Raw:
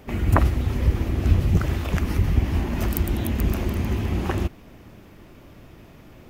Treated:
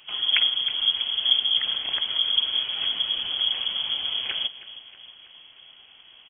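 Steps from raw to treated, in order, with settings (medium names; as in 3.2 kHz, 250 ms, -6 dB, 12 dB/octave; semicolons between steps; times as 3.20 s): peaking EQ 170 Hz -7 dB 1.1 oct; feedback delay 318 ms, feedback 56%, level -16 dB; frequency inversion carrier 3.3 kHz; trim -4 dB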